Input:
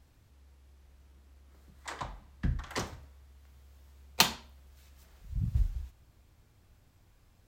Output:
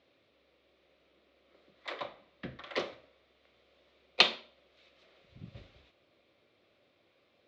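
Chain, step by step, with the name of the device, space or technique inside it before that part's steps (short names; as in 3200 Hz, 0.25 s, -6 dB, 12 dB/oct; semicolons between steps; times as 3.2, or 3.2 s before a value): phone earpiece (speaker cabinet 350–4000 Hz, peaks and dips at 360 Hz +4 dB, 560 Hz +9 dB, 890 Hz -10 dB, 1600 Hz -6 dB, 2300 Hz +4 dB, 3700 Hz +5 dB); gain +2 dB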